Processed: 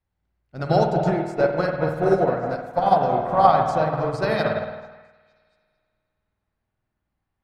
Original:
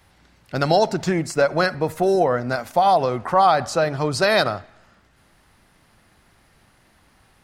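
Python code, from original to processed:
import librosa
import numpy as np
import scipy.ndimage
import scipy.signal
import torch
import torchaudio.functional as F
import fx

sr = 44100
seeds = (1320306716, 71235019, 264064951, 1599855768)

y = fx.tilt_eq(x, sr, slope=-2.0)
y = fx.echo_stepped(y, sr, ms=227, hz=690.0, octaves=0.7, feedback_pct=70, wet_db=-4.5)
y = fx.rev_spring(y, sr, rt60_s=2.3, pass_ms=(51,), chirp_ms=60, drr_db=-0.5)
y = fx.upward_expand(y, sr, threshold_db=-28.0, expansion=2.5)
y = F.gain(torch.from_numpy(y), -1.0).numpy()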